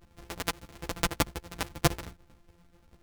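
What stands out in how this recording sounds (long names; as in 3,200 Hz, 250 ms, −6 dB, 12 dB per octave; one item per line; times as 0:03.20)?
a buzz of ramps at a fixed pitch in blocks of 256 samples
tremolo triangle 11 Hz, depth 55%
a shimmering, thickened sound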